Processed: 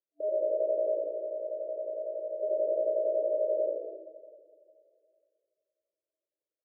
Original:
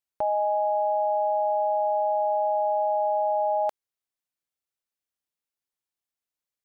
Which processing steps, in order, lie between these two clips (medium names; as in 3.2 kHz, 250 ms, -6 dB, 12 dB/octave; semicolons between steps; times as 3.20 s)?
0.97–2.43 s: peaking EQ 480 Hz -15 dB 2.4 oct; Schroeder reverb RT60 2.5 s, DRR 10 dB; in parallel at +3 dB: peak limiter -29 dBFS, peak gain reduction 11 dB; on the sum: flange 0.92 Hz, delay 0.3 ms, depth 9.2 ms, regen -28%; one-sided clip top -38 dBFS, bottom -20.5 dBFS; frequency-shifting echo 80 ms, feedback 51%, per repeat -58 Hz, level -5 dB; FFT band-pass 300–660 Hz; trim +2 dB